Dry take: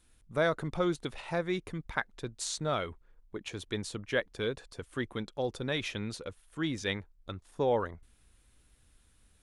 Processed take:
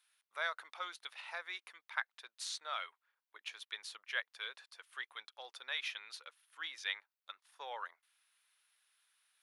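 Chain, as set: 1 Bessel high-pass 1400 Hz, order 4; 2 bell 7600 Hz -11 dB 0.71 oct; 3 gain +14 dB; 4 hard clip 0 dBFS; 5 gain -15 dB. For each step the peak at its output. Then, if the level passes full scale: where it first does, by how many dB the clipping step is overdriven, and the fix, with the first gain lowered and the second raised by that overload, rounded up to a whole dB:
-17.5, -17.5, -3.5, -3.5, -18.5 dBFS; no overload

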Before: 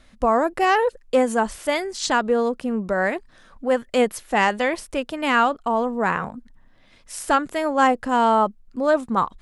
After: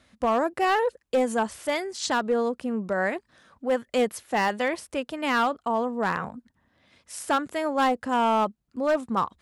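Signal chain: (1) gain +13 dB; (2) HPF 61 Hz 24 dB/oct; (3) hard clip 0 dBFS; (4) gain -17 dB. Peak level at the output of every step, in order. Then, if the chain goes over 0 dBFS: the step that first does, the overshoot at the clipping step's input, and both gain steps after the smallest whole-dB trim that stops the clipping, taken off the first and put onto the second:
+7.0, +7.0, 0.0, -17.0 dBFS; step 1, 7.0 dB; step 1 +6 dB, step 4 -10 dB

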